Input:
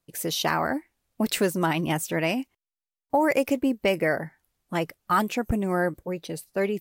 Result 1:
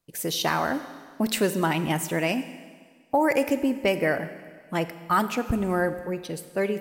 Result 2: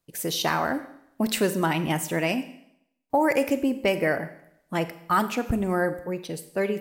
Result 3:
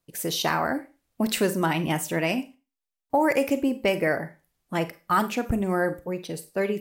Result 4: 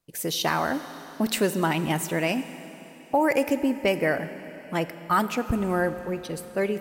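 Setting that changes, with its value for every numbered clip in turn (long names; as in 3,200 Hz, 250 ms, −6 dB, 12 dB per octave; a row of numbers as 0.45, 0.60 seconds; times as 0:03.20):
four-comb reverb, RT60: 1.7, 0.75, 0.3, 3.7 seconds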